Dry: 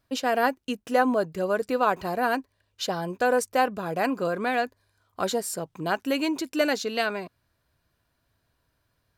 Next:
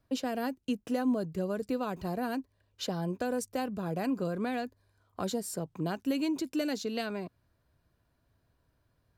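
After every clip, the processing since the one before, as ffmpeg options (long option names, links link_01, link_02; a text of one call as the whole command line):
ffmpeg -i in.wav -filter_complex "[0:a]tiltshelf=frequency=970:gain=4.5,acrossover=split=260|3000[link_01][link_02][link_03];[link_02]acompressor=threshold=-33dB:ratio=4[link_04];[link_01][link_04][link_03]amix=inputs=3:normalize=0,volume=-2.5dB" out.wav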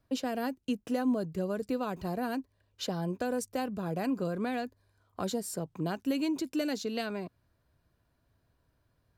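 ffmpeg -i in.wav -af anull out.wav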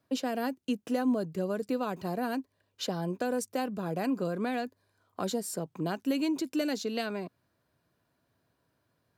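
ffmpeg -i in.wav -af "highpass=150,volume=1.5dB" out.wav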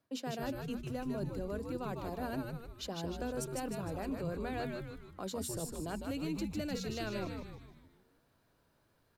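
ffmpeg -i in.wav -filter_complex "[0:a]bandreject=frequency=60:width_type=h:width=6,bandreject=frequency=120:width_type=h:width=6,bandreject=frequency=180:width_type=h:width=6,bandreject=frequency=240:width_type=h:width=6,areverse,acompressor=threshold=-38dB:ratio=6,areverse,asplit=7[link_01][link_02][link_03][link_04][link_05][link_06][link_07];[link_02]adelay=153,afreqshift=-110,volume=-3.5dB[link_08];[link_03]adelay=306,afreqshift=-220,volume=-9.7dB[link_09];[link_04]adelay=459,afreqshift=-330,volume=-15.9dB[link_10];[link_05]adelay=612,afreqshift=-440,volume=-22.1dB[link_11];[link_06]adelay=765,afreqshift=-550,volume=-28.3dB[link_12];[link_07]adelay=918,afreqshift=-660,volume=-34.5dB[link_13];[link_01][link_08][link_09][link_10][link_11][link_12][link_13]amix=inputs=7:normalize=0,volume=1dB" out.wav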